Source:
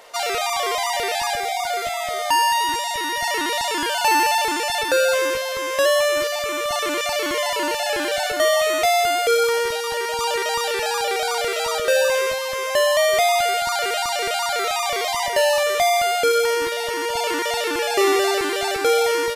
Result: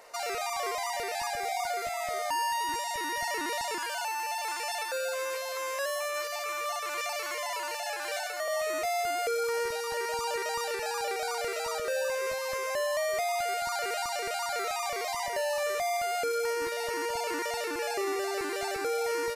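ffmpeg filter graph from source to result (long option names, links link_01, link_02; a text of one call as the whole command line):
ffmpeg -i in.wav -filter_complex "[0:a]asettb=1/sr,asplit=3[link_01][link_02][link_03];[link_01]atrim=end=3.784[link_04];[link_02]atrim=start=3.78:end=8.48,asetpts=PTS-STARTPTS,afade=type=in:duration=0.004:curve=qsin,afade=type=out:start_time=4.696:duration=0.004:curve=qsin,highpass=frequency=560:width=0.5412,highpass=frequency=560:width=1.3066,aecho=1:1:6:0.31,atrim=end_sample=207270[link_05];[link_03]atrim=start=8.476[link_06];[link_04][link_05]acrossfade=duration=0.004:curve1=hsin:curve2=qsin[link_07];[link_07][link_06]acrossfade=duration=0.004:curve1=qsin:curve2=hsin,equalizer=frequency=3300:width_type=o:width=0.26:gain=-13,alimiter=limit=-17.5dB:level=0:latency=1:release=244,volume=-6.5dB" out.wav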